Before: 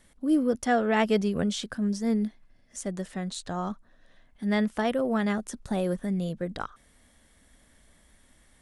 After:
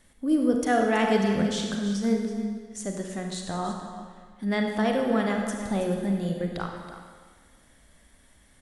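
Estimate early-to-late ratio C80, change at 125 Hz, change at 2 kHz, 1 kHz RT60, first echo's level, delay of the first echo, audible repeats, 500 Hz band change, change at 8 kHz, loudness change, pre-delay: 4.5 dB, +1.5 dB, +2.0 dB, 1.6 s, -12.0 dB, 0.325 s, 1, +2.0 dB, +2.0 dB, +1.5 dB, 32 ms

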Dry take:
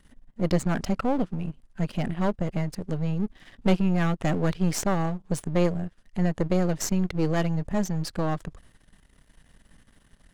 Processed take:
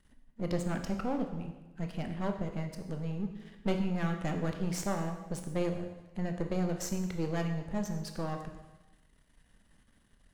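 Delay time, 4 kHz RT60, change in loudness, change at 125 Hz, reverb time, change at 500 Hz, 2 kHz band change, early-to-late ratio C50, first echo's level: none, 1.0 s, -8.0 dB, -8.5 dB, 1.1 s, -8.0 dB, -7.5 dB, 7.5 dB, none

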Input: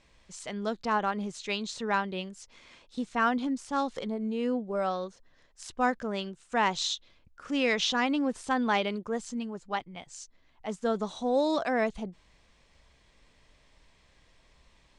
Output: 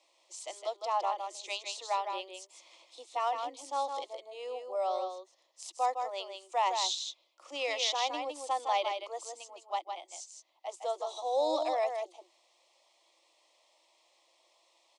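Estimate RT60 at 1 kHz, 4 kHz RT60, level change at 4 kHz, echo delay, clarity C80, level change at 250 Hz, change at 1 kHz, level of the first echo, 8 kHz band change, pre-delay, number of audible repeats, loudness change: none, none, -1.5 dB, 0.16 s, none, -20.5 dB, -0.5 dB, -6.0 dB, +0.5 dB, none, 1, -4.0 dB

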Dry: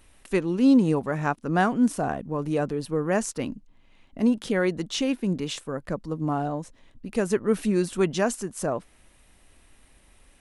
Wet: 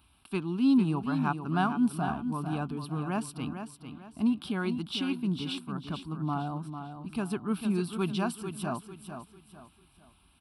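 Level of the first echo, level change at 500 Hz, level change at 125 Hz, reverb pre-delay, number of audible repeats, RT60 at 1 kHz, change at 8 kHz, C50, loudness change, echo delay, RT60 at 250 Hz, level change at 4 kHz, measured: -8.5 dB, -12.0 dB, -2.5 dB, none, 3, none, -10.5 dB, none, -5.5 dB, 0.449 s, none, -2.5 dB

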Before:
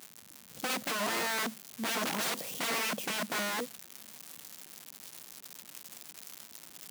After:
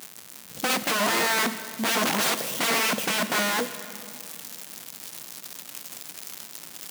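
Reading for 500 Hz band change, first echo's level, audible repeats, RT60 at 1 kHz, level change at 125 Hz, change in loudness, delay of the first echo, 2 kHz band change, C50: +9.0 dB, none, none, 2.2 s, +9.0 dB, +8.5 dB, none, +9.0 dB, 11.5 dB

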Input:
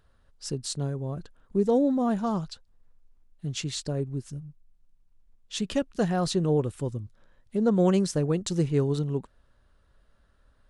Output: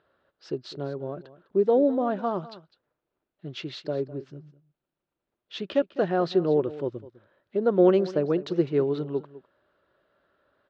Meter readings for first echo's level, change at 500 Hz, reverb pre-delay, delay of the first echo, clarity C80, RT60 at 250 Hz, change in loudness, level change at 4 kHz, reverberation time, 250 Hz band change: -17.0 dB, +4.5 dB, none, 0.204 s, none, none, +1.5 dB, -4.0 dB, none, -1.0 dB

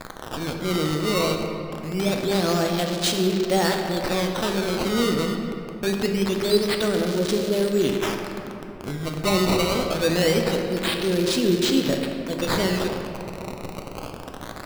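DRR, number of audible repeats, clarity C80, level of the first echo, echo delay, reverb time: 2.5 dB, none, 5.0 dB, none, none, 3.0 s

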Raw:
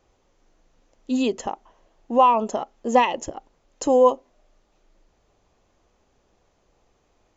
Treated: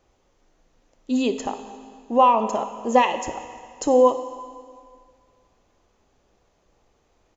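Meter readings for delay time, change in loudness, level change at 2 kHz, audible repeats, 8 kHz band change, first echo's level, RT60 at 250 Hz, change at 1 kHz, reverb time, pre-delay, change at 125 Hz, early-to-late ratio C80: 60 ms, 0.0 dB, +0.5 dB, 1, n/a, -16.0 dB, 2.0 s, +0.5 dB, 2.0 s, 19 ms, n/a, 11.0 dB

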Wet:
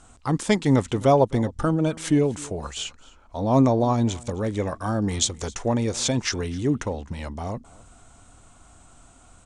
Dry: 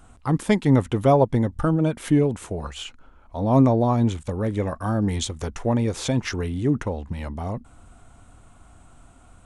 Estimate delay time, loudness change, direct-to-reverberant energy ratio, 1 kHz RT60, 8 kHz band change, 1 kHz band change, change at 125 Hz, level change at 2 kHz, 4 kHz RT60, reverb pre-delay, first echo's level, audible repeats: 0.261 s, -1.0 dB, none, none, +7.5 dB, 0.0 dB, -2.5 dB, +0.5 dB, none, none, -22.5 dB, 1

